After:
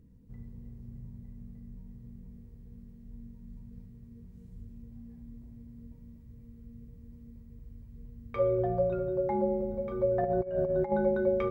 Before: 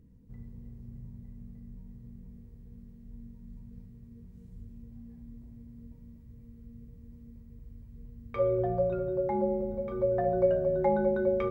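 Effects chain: 10.23–10.92 negative-ratio compressor -29 dBFS, ratio -0.5

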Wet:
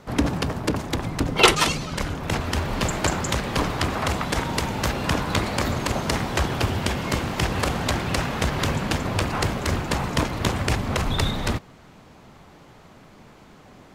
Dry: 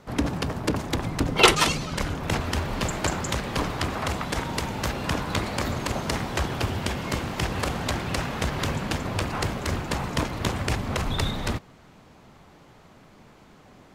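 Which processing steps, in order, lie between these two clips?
vocal rider 2 s; gain +2 dB

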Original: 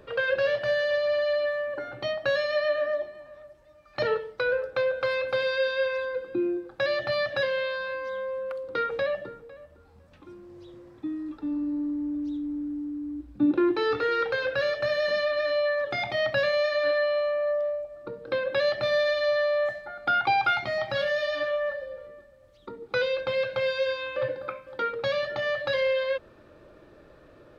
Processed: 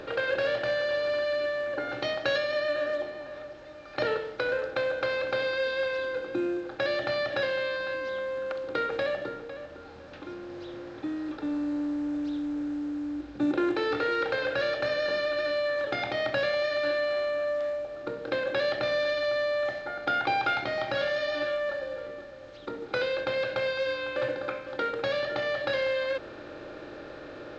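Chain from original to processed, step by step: per-bin compression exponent 0.6; 1.89–2.38 high shelf 3100 Hz +7.5 dB; gain -5 dB; A-law 128 kbps 16000 Hz

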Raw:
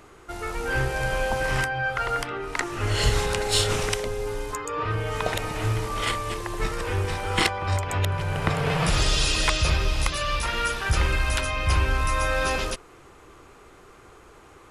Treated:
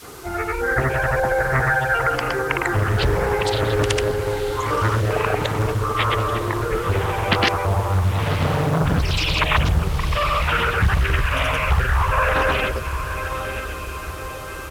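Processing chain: spectral gate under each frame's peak -15 dB strong; HPF 57 Hz 12 dB/oct; in parallel at +1 dB: compressor, threshold -37 dBFS, peak gain reduction 18 dB; on the sum: grains 0.1 s, grains 22/s, spray 0.1 s, pitch spread up and down by 0 st; requantised 8-bit, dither triangular; on a send: diffused feedback echo 0.984 s, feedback 54%, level -8.5 dB; on the sum: downsampling 32000 Hz; Doppler distortion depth 0.97 ms; gain +6.5 dB

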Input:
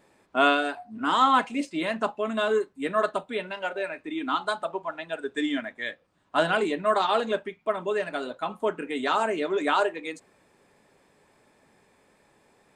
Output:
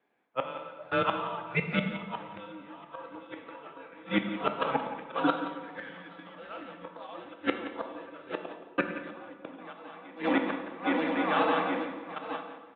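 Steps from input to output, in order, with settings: regenerating reverse delay 0.409 s, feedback 73%, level -5.5 dB; gate with hold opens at -30 dBFS; bell 210 Hz -13 dB 1.1 oct; auto swell 0.166 s; 5.63–6.63 power-law curve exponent 0.7; 8.36–9.57 step gate "xxx.x..xx" 135 bpm -60 dB; flipped gate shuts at -22 dBFS, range -29 dB; echo 0.174 s -13.5 dB; on a send at -5 dB: reverb RT60 1.6 s, pre-delay 4 ms; on the sum: mistuned SSB -120 Hz 270–3500 Hz; gain +9 dB

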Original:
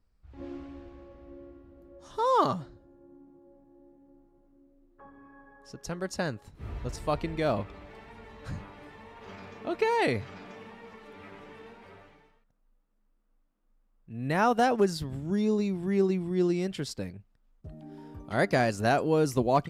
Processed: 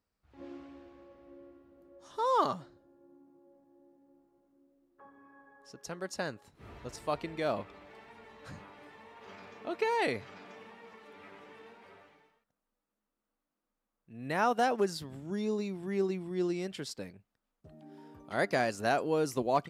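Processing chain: HPF 300 Hz 6 dB/oct; gain -3 dB

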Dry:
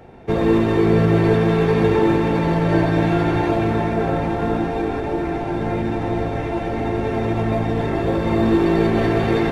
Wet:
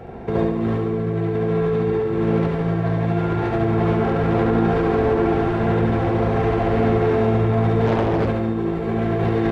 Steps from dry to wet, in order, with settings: high shelf 2900 Hz -9.5 dB; in parallel at -1.5 dB: limiter -14.5 dBFS, peak gain reduction 10 dB; on the sum: negative-ratio compressor -17 dBFS, ratio -0.5; soft clip -15.5 dBFS, distortion -11 dB; notch comb 300 Hz; feedback echo 71 ms, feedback 56%, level -4 dB; 7.86–8.28 Doppler distortion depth 0.75 ms

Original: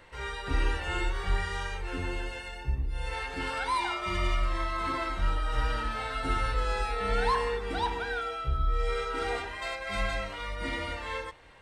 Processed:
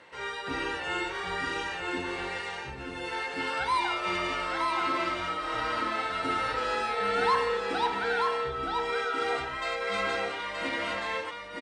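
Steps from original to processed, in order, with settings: BPF 200–7700 Hz; on a send: echo 0.925 s -4.5 dB; on the sum: gain +2 dB

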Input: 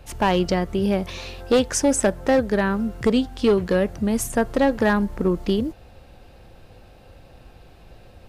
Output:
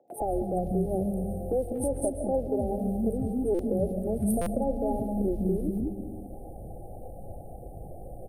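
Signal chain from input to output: FFT band-reject 840–8400 Hz; limiter -18 dBFS, peak gain reduction 8.5 dB; phaser 1.7 Hz, delay 3.5 ms, feedback 33%; three bands offset in time mids, highs, lows 80/200 ms, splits 280/2400 Hz; gate with hold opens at -44 dBFS; reverb RT60 1.2 s, pre-delay 0.1 s, DRR 9.5 dB; stuck buffer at 3.54/4.41, samples 256, times 8; three-band squash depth 40%; gain -1 dB

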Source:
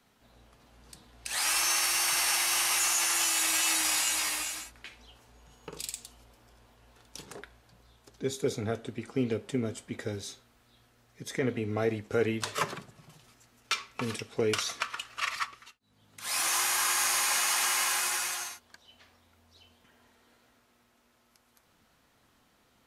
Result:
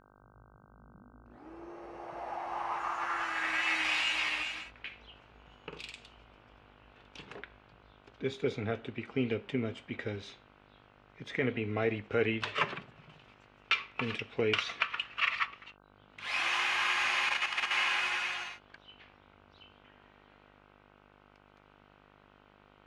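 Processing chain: low-pass sweep 150 Hz -> 2700 Hz, 0.5–3.95; 17.29–17.71 level quantiser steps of 9 dB; buzz 50 Hz, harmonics 31, -60 dBFS -1 dB/oct; gain -2.5 dB

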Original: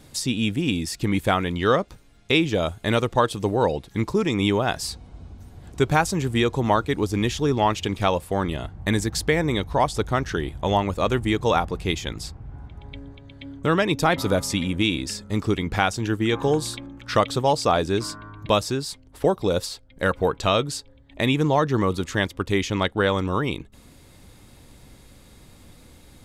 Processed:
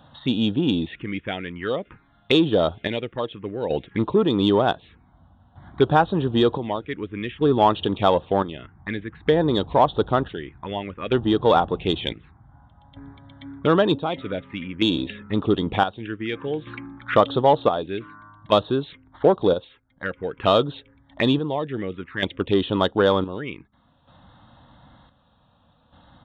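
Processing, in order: chopper 0.54 Hz, depth 65%, duty 55%; downsampling 8000 Hz; envelope phaser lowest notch 360 Hz, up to 2200 Hz, full sweep at -21 dBFS; in parallel at -8.5 dB: soft clip -21 dBFS, distortion -10 dB; on the sum: HPF 270 Hz 6 dB/oct; gain +4.5 dB

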